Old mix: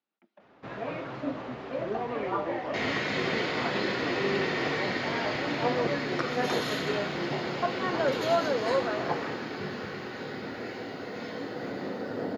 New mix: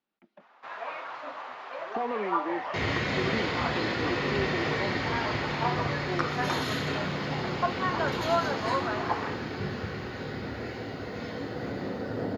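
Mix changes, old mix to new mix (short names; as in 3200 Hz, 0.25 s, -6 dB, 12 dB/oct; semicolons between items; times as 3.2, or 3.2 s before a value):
speech +3.0 dB; first sound: add resonant high-pass 950 Hz, resonance Q 1.7; master: remove HPF 190 Hz 12 dB/oct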